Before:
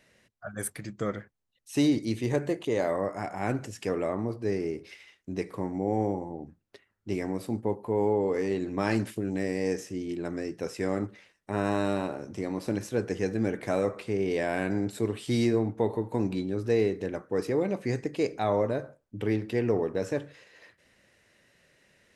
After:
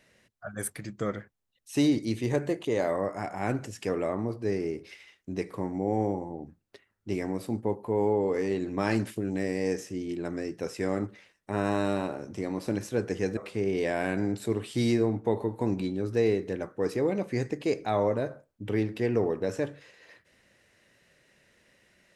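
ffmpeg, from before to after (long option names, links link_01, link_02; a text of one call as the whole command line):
ffmpeg -i in.wav -filter_complex "[0:a]asplit=2[link_01][link_02];[link_01]atrim=end=13.372[link_03];[link_02]atrim=start=13.898[link_04];[link_03][link_04]acrossfade=duration=0.004:curve1=hsin:curve2=hsin" out.wav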